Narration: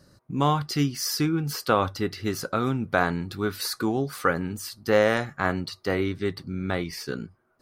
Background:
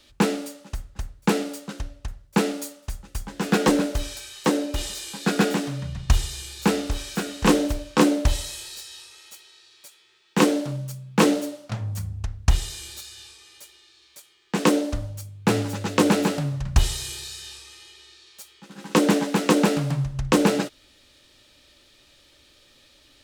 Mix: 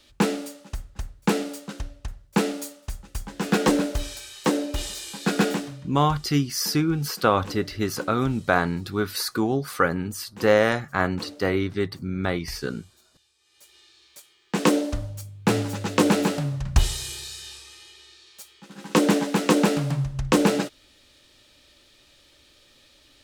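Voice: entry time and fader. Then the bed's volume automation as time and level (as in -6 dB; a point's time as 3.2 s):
5.55 s, +2.0 dB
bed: 5.51 s -1 dB
6.12 s -21.5 dB
13.33 s -21.5 dB
13.78 s -0.5 dB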